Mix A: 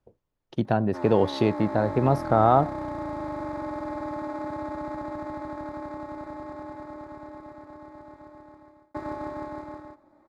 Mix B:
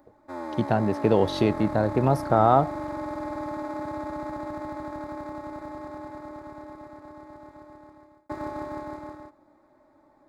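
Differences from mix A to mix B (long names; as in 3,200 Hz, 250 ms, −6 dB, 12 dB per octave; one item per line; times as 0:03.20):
background: entry −0.65 s
master: add high-shelf EQ 8,100 Hz +10 dB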